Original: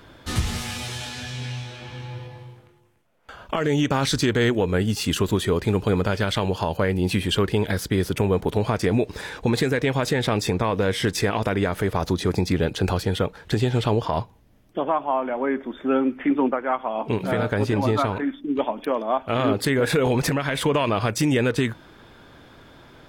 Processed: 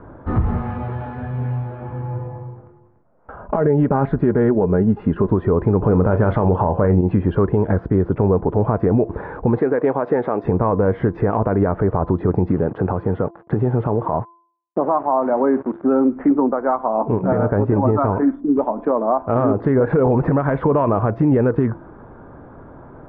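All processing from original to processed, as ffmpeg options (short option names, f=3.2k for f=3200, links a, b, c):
-filter_complex "[0:a]asettb=1/sr,asplit=3[a][b][c];[a]atrim=end=3.414[d];[b]atrim=start=3.41:end=5.29,asetpts=PTS-STARTPTS,afade=t=in:d=0.004:c=qsin,afade=t=out:st=1.876:d=0.004:c=qsin,lowpass=3.1k,equalizer=f=1.2k:w=5.6:g=-4,aecho=1:1:4.9:0.35,atrim=end_sample=82908[e];[c]atrim=start=5.286[f];[d][e]acrossfade=d=0.004:c1=hsin:c2=qsin[g];[g][f]acrossfade=d=0.004:c1=qsin:c2=hsin,asettb=1/sr,asplit=3[h][i][j];[h]atrim=end=5.814[k];[i]atrim=start=5.81:end=7.01,asetpts=PTS-STARTPTS,afade=t=in:d=0.004:c=qsin,afade=t=out:st=1.196:d=0.004:c=qsin,acontrast=80,asplit=2[l][m];[m]adelay=33,volume=-13.5dB[n];[l][n]amix=inputs=2:normalize=0,atrim=end_sample=52920[o];[j]atrim=start=7.006[p];[k][o]acrossfade=d=0.004:c1=hsin:c2=qsin[q];[q][p]acrossfade=d=0.004:c1=qsin:c2=hsin,asettb=1/sr,asplit=3[r][s][t];[r]atrim=end=9.584[u];[s]atrim=start=9.58:end=10.44,asetpts=PTS-STARTPTS,afade=t=in:d=0.004:c=qsin,afade=t=out:st=0.856:d=0.004:c=qsin,highpass=310,aeval=exprs='val(0)+0.0251*sin(2*PI*8800*n/s)':c=same[v];[t]atrim=start=10.436[w];[u][v]acrossfade=d=0.004:c1=hsin:c2=qsin[x];[x][w]acrossfade=d=0.004:c1=qsin:c2=hsin,asettb=1/sr,asplit=3[y][z][aa];[y]atrim=end=12.484[ab];[z]atrim=start=12.48:end=15.83,asetpts=PTS-STARTPTS,afade=t=in:d=0.004:c=qsin,afade=t=out:st=3.346:d=0.004:c=qsin,acrusher=bits=5:mix=0:aa=0.5,highpass=99[ac];[aa]atrim=start=15.826[ad];[ab][ac]acrossfade=d=0.004:c1=hsin:c2=qsin[ae];[ae][ad]acrossfade=d=0.004:c1=qsin:c2=hsin,lowpass=f=1.2k:w=0.5412,lowpass=f=1.2k:w=1.3066,bandreject=f=340.1:t=h:w=4,bandreject=f=680.2:t=h:w=4,bandreject=f=1.0203k:t=h:w=4,alimiter=limit=-17dB:level=0:latency=1:release=117,volume=9dB"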